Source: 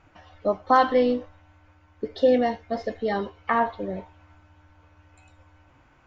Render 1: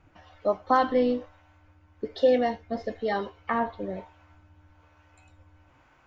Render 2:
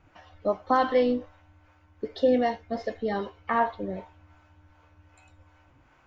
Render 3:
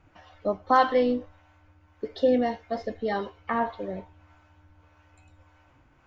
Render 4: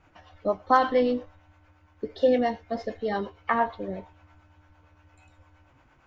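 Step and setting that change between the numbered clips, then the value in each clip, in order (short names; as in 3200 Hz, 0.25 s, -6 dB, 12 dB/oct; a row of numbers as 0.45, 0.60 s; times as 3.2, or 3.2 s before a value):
harmonic tremolo, rate: 1.1, 2.6, 1.7, 8.7 Hz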